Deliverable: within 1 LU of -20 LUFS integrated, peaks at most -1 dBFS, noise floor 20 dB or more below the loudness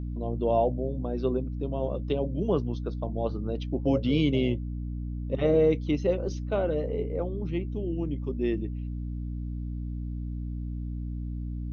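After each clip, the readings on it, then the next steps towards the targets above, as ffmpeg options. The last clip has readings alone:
hum 60 Hz; highest harmonic 300 Hz; hum level -31 dBFS; loudness -29.5 LUFS; peak level -12.0 dBFS; loudness target -20.0 LUFS
-> -af "bandreject=f=60:t=h:w=6,bandreject=f=120:t=h:w=6,bandreject=f=180:t=h:w=6,bandreject=f=240:t=h:w=6,bandreject=f=300:t=h:w=6"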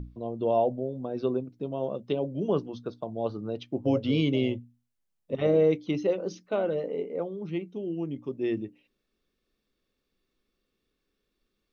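hum not found; loudness -29.5 LUFS; peak level -13.5 dBFS; loudness target -20.0 LUFS
-> -af "volume=2.99"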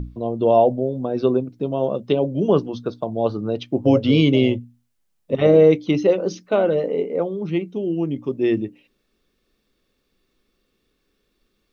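loudness -20.0 LUFS; peak level -4.0 dBFS; noise floor -71 dBFS

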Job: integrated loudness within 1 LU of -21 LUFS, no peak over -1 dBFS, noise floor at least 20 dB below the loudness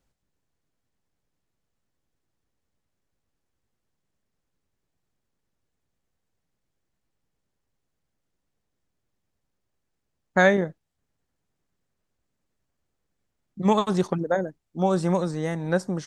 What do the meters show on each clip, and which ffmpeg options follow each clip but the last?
loudness -24.0 LUFS; peak level -5.0 dBFS; loudness target -21.0 LUFS
-> -af "volume=1.41"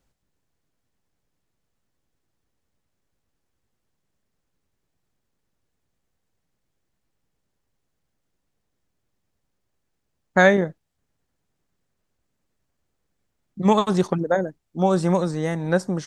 loudness -21.5 LUFS; peak level -2.0 dBFS; noise floor -77 dBFS

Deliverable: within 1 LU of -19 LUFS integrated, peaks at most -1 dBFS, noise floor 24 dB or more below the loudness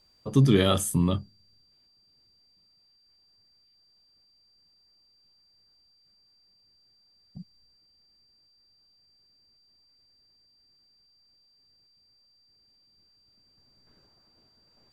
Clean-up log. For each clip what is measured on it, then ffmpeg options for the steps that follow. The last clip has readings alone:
steady tone 4.7 kHz; tone level -62 dBFS; loudness -23.5 LUFS; peak level -8.0 dBFS; loudness target -19.0 LUFS
-> -af "bandreject=f=4700:w=30"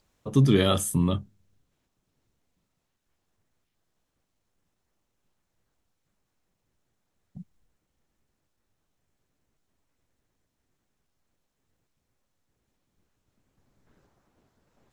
steady tone not found; loudness -23.5 LUFS; peak level -8.0 dBFS; loudness target -19.0 LUFS
-> -af "volume=1.68"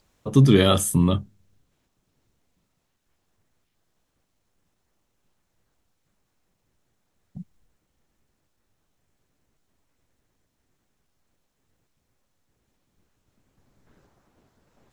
loudness -19.0 LUFS; peak level -3.5 dBFS; noise floor -75 dBFS

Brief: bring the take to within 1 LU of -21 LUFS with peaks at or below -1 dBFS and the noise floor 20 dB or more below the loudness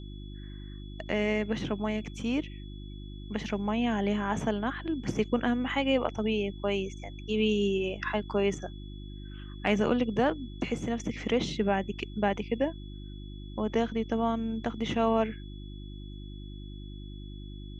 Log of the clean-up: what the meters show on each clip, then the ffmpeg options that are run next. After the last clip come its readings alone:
hum 50 Hz; highest harmonic 350 Hz; hum level -40 dBFS; steady tone 3.4 kHz; tone level -54 dBFS; loudness -30.0 LUFS; peak level -12.0 dBFS; loudness target -21.0 LUFS
-> -af "bandreject=f=50:t=h:w=4,bandreject=f=100:t=h:w=4,bandreject=f=150:t=h:w=4,bandreject=f=200:t=h:w=4,bandreject=f=250:t=h:w=4,bandreject=f=300:t=h:w=4,bandreject=f=350:t=h:w=4"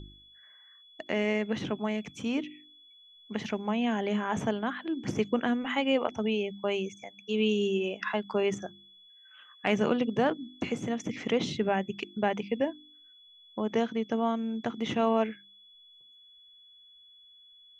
hum not found; steady tone 3.4 kHz; tone level -54 dBFS
-> -af "bandreject=f=3400:w=30"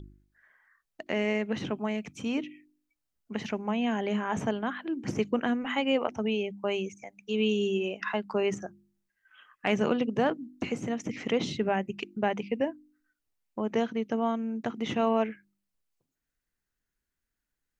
steady tone not found; loudness -30.5 LUFS; peak level -12.5 dBFS; loudness target -21.0 LUFS
-> -af "volume=2.99"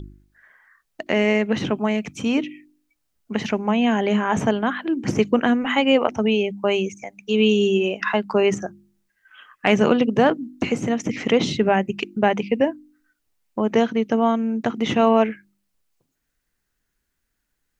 loudness -21.0 LUFS; peak level -3.0 dBFS; noise floor -76 dBFS

